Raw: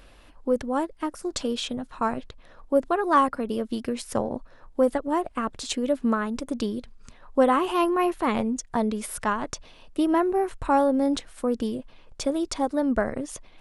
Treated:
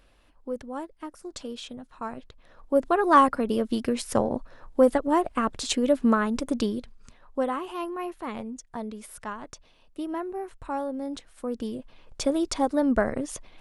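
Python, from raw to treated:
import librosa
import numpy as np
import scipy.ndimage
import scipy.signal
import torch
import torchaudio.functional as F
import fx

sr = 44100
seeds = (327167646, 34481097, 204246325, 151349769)

y = fx.gain(x, sr, db=fx.line((2.08, -9.0), (3.03, 2.5), (6.55, 2.5), (7.66, -10.0), (11.1, -10.0), (12.21, 1.0)))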